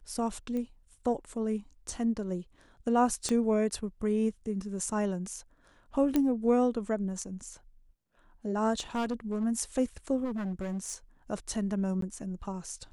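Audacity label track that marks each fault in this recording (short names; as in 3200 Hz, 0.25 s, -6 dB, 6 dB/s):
0.570000	0.570000	pop -25 dBFS
3.290000	3.290000	pop -18 dBFS
6.160000	6.160000	pop -14 dBFS
8.790000	9.450000	clipped -27 dBFS
10.240000	10.940000	clipped -30.5 dBFS
12.010000	12.020000	gap 13 ms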